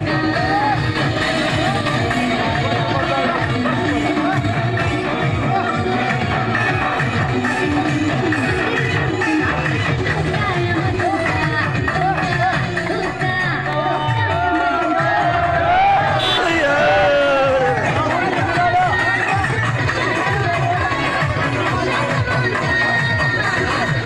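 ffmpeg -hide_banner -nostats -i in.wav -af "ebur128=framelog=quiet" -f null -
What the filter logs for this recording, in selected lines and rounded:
Integrated loudness:
  I:         -17.2 LUFS
  Threshold: -27.2 LUFS
Loudness range:
  LRA:         3.0 LU
  Threshold: -37.2 LUFS
  LRA low:   -18.1 LUFS
  LRA high:  -15.1 LUFS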